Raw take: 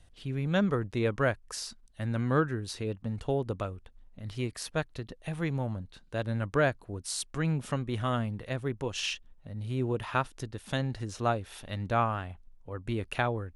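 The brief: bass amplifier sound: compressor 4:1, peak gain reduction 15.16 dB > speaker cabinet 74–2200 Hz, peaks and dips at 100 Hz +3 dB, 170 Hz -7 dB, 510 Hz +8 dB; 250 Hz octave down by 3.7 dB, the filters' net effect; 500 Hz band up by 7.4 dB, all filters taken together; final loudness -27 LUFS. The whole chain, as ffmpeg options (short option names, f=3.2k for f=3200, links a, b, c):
-af "equalizer=f=250:t=o:g=-5.5,equalizer=f=500:t=o:g=5,acompressor=threshold=-37dB:ratio=4,highpass=f=74:w=0.5412,highpass=f=74:w=1.3066,equalizer=f=100:t=q:w=4:g=3,equalizer=f=170:t=q:w=4:g=-7,equalizer=f=510:t=q:w=4:g=8,lowpass=f=2.2k:w=0.5412,lowpass=f=2.2k:w=1.3066,volume=12.5dB"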